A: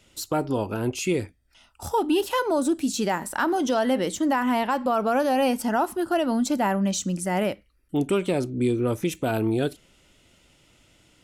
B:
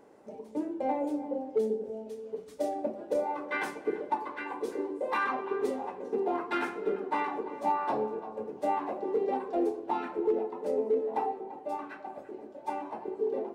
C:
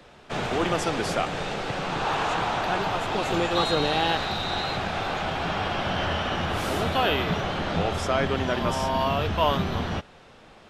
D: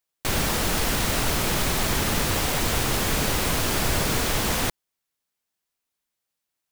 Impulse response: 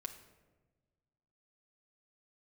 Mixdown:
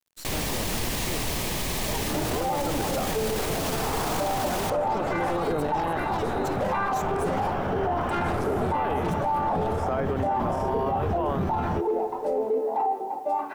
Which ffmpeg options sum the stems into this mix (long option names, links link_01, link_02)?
-filter_complex "[0:a]aeval=exprs='0.224*(cos(1*acos(clip(val(0)/0.224,-1,1)))-cos(1*PI/2))+0.0251*(cos(5*acos(clip(val(0)/0.224,-1,1)))-cos(5*PI/2))+0.0562*(cos(8*acos(clip(val(0)/0.224,-1,1)))-cos(8*PI/2))':channel_layout=same,volume=-14.5dB[link_01];[1:a]equalizer=frequency=790:width=1.5:gain=11.5,adelay=1600,volume=2dB[link_02];[2:a]acrossover=split=2800[link_03][link_04];[link_04]acompressor=threshold=-43dB:ratio=4:attack=1:release=60[link_05];[link_03][link_05]amix=inputs=2:normalize=0,equalizer=frequency=3400:width_type=o:width=1.9:gain=-14,adelay=1800,volume=2dB[link_06];[3:a]equalizer=frequency=1400:width_type=o:width=0.24:gain=-11.5,volume=-4dB[link_07];[link_01][link_02][link_06][link_07]amix=inputs=4:normalize=0,acrusher=bits=9:mix=0:aa=0.000001,alimiter=limit=-18.5dB:level=0:latency=1:release=10"